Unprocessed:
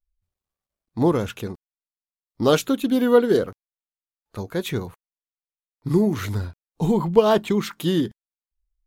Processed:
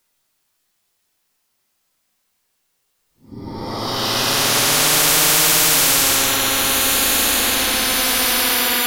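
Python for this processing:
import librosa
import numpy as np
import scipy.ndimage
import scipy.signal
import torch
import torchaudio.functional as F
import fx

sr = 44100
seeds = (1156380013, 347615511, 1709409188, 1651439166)

y = fx.paulstretch(x, sr, seeds[0], factor=7.3, window_s=0.25, from_s=1.84)
y = fx.spectral_comp(y, sr, ratio=10.0)
y = y * 10.0 ** (3.5 / 20.0)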